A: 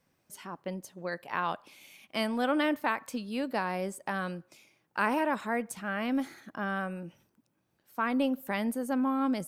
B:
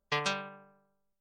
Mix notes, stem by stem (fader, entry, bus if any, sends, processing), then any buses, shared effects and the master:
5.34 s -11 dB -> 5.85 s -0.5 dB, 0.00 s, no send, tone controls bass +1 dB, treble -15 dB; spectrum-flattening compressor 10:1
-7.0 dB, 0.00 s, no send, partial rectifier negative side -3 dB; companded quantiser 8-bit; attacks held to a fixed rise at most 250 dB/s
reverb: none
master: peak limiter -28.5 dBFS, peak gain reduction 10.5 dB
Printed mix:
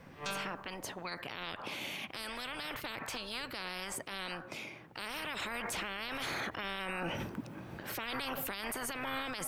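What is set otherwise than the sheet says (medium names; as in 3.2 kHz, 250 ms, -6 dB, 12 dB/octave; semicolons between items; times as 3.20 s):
stem A -11.0 dB -> -3.0 dB; stem B -7.0 dB -> +3.0 dB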